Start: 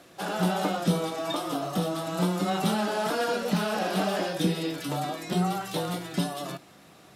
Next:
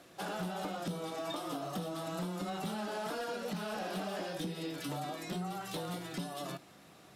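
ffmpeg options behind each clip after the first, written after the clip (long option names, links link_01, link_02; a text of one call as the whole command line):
ffmpeg -i in.wav -af "acompressor=threshold=-31dB:ratio=4,asoftclip=type=hard:threshold=-27dB,volume=-4.5dB" out.wav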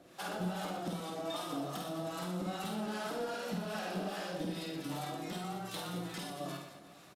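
ffmpeg -i in.wav -filter_complex "[0:a]acrossover=split=740[link_01][link_02];[link_01]aeval=exprs='val(0)*(1-0.7/2+0.7/2*cos(2*PI*2.5*n/s))':channel_layout=same[link_03];[link_02]aeval=exprs='val(0)*(1-0.7/2-0.7/2*cos(2*PI*2.5*n/s))':channel_layout=same[link_04];[link_03][link_04]amix=inputs=2:normalize=0,asplit=2[link_05][link_06];[link_06]aecho=0:1:50|120|218|355.2|547.3:0.631|0.398|0.251|0.158|0.1[link_07];[link_05][link_07]amix=inputs=2:normalize=0,volume=1dB" out.wav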